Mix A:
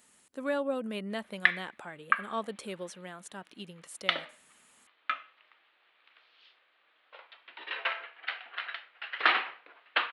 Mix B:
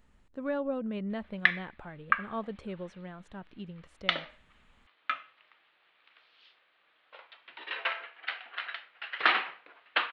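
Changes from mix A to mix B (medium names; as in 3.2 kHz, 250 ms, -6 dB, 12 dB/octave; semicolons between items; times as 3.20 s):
speech: add tape spacing loss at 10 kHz 28 dB; master: remove high-pass 230 Hz 12 dB/octave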